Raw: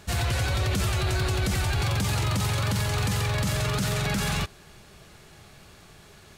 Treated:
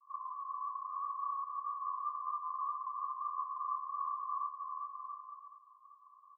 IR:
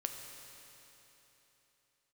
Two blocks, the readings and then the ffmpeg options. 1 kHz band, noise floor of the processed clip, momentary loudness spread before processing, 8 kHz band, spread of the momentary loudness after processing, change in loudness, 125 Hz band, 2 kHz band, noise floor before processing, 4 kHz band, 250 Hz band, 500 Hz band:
-1.0 dB, -62 dBFS, 1 LU, under -40 dB, 8 LU, -13.5 dB, under -40 dB, under -40 dB, -51 dBFS, under -40 dB, under -40 dB, under -40 dB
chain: -af "asuperpass=centerf=1100:order=20:qfactor=6.3,aecho=1:1:400|680|876|1013|1109:0.631|0.398|0.251|0.158|0.1,volume=3.5dB"

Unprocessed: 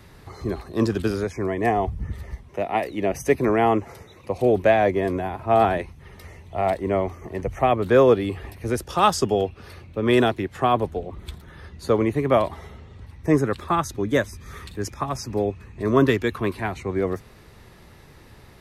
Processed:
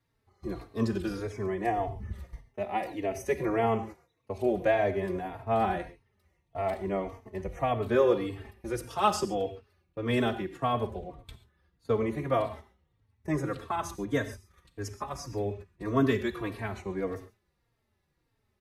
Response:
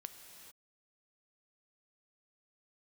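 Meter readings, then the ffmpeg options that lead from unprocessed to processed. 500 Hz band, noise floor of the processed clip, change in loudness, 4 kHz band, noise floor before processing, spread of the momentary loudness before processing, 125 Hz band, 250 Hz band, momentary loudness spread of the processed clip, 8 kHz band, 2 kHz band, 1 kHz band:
-8.5 dB, -77 dBFS, -8.0 dB, -8.5 dB, -48 dBFS, 15 LU, -8.0 dB, -8.0 dB, 16 LU, -8.0 dB, -8.0 dB, -8.0 dB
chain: -filter_complex "[0:a]agate=range=-20dB:threshold=-35dB:ratio=16:detection=peak[a];[1:a]atrim=start_sample=2205,afade=t=out:st=0.19:d=0.01,atrim=end_sample=8820[b];[a][b]afir=irnorm=-1:irlink=0,asplit=2[c][d];[d]adelay=3.8,afreqshift=-1.7[e];[c][e]amix=inputs=2:normalize=1"

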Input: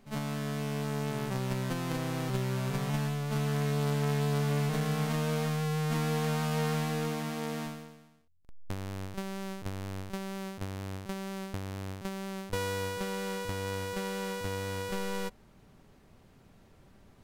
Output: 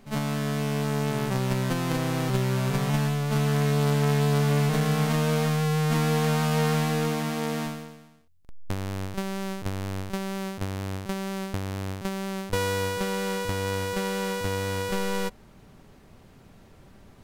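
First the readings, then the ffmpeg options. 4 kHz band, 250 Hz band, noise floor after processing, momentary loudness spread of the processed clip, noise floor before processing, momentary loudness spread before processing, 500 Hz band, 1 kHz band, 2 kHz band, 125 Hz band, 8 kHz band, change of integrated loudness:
+6.5 dB, +6.5 dB, -53 dBFS, 9 LU, -60 dBFS, 9 LU, +6.5 dB, +6.5 dB, +6.5 dB, +6.5 dB, +6.5 dB, +6.5 dB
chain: -af "acontrast=69"

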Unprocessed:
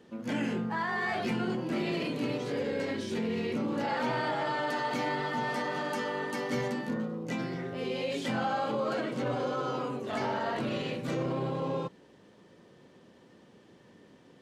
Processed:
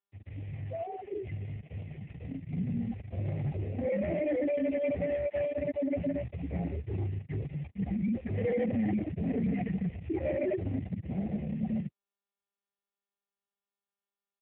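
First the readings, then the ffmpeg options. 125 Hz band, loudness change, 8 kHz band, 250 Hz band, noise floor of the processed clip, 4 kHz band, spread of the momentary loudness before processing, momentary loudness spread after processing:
+4.5 dB, -1.0 dB, under -30 dB, +0.5 dB, under -85 dBFS, under -20 dB, 4 LU, 10 LU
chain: -af "afftfilt=real='re*gte(hypot(re,im),0.112)':imag='im*gte(hypot(re,im),0.112)':win_size=1024:overlap=0.75,dynaudnorm=f=520:g=13:m=11.5dB,aresample=11025,acrusher=bits=3:mode=log:mix=0:aa=0.000001,aresample=44100,asoftclip=type=hard:threshold=-26.5dB,highpass=f=180:t=q:w=0.5412,highpass=f=180:t=q:w=1.307,lowpass=f=2.8k:t=q:w=0.5176,lowpass=f=2.8k:t=q:w=0.7071,lowpass=f=2.8k:t=q:w=1.932,afreqshift=-320,asuperstop=centerf=1200:order=20:qfactor=1.3" -ar 8000 -c:a libopencore_amrnb -b:a 7400

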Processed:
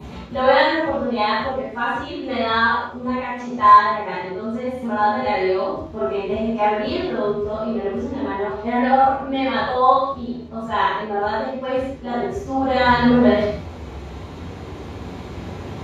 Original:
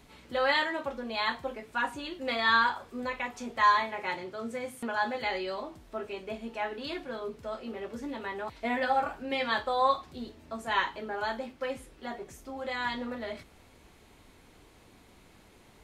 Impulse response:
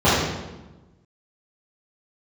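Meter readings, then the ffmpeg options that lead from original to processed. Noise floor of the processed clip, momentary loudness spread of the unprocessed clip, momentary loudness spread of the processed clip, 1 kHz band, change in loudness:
-35 dBFS, 14 LU, 18 LU, +12.5 dB, +11.5 dB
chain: -filter_complex "[1:a]atrim=start_sample=2205,afade=t=out:st=0.27:d=0.01,atrim=end_sample=12348[a];[0:a][a]afir=irnorm=-1:irlink=0,dynaudnorm=f=290:g=13:m=11.5dB,volume=-1dB"

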